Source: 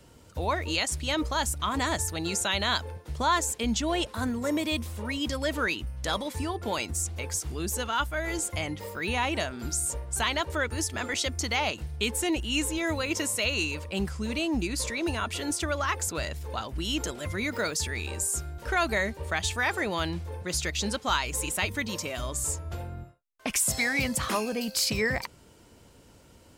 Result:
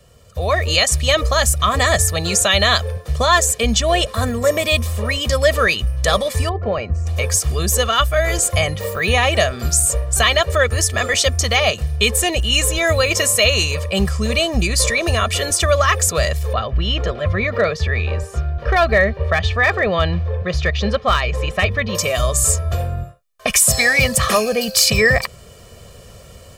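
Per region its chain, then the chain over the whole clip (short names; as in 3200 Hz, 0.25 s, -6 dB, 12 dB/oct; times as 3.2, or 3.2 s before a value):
6.49–7.07 tape spacing loss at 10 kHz 44 dB + notch 3500 Hz, Q 5.8
16.53–21.95 air absorption 290 m + hard clip -20.5 dBFS
whole clip: dynamic EQ 1000 Hz, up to -4 dB, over -42 dBFS, Q 4.2; comb 1.7 ms, depth 82%; AGC gain up to 10.5 dB; gain +1.5 dB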